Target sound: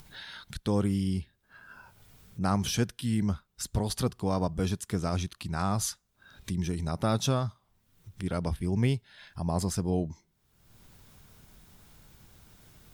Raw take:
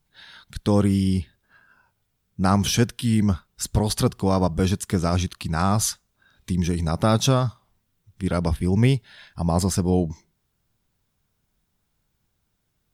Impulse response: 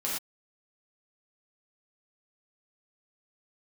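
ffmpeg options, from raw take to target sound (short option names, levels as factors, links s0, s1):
-af "acompressor=mode=upward:threshold=0.0501:ratio=2.5,volume=0.398"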